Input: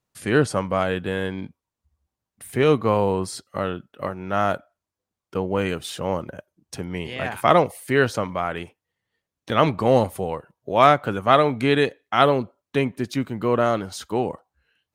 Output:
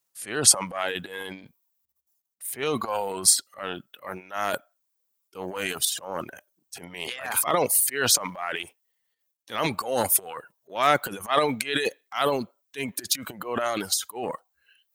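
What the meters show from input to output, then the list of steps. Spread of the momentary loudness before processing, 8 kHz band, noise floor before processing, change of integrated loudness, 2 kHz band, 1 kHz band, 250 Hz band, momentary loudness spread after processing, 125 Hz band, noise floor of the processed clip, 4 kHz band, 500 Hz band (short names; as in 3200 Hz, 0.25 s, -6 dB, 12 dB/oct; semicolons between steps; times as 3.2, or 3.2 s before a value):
14 LU, +17.0 dB, under -85 dBFS, -2.5 dB, -3.0 dB, -6.5 dB, -10.0 dB, 19 LU, -13.5 dB, -77 dBFS, +3.5 dB, -8.5 dB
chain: transient shaper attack -10 dB, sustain +12 dB; RIAA curve recording; reverb removal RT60 1.6 s; gain -4 dB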